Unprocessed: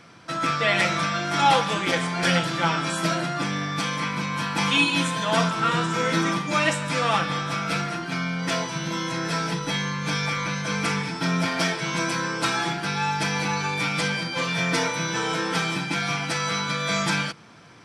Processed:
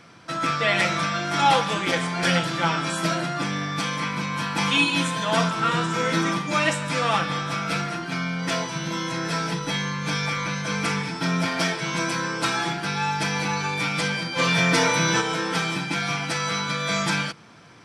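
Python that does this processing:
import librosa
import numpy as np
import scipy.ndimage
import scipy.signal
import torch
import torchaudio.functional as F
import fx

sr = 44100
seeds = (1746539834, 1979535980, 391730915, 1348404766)

y = fx.env_flatten(x, sr, amount_pct=50, at=(14.38, 15.2), fade=0.02)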